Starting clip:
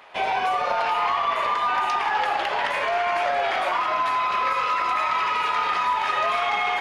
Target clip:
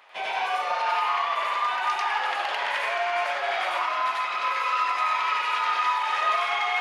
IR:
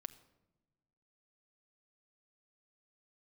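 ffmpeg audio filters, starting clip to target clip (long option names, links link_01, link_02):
-filter_complex "[0:a]highpass=frequency=760:poles=1,asplit=2[link_01][link_02];[1:a]atrim=start_sample=2205,lowshelf=frequency=390:gain=-11,adelay=93[link_03];[link_02][link_03]afir=irnorm=-1:irlink=0,volume=7dB[link_04];[link_01][link_04]amix=inputs=2:normalize=0,volume=-4.5dB"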